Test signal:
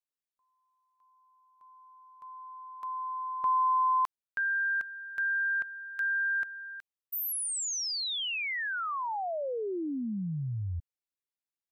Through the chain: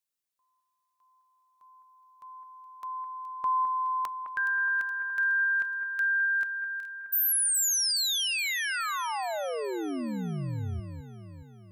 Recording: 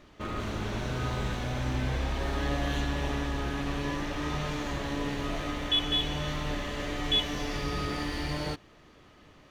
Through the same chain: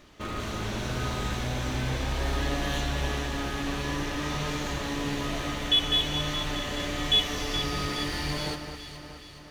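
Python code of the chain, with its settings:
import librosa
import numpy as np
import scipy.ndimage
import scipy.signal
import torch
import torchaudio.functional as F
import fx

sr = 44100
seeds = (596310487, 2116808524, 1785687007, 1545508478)

y = fx.high_shelf(x, sr, hz=3400.0, db=8.0)
y = fx.echo_alternate(y, sr, ms=210, hz=2100.0, feedback_pct=73, wet_db=-7.5)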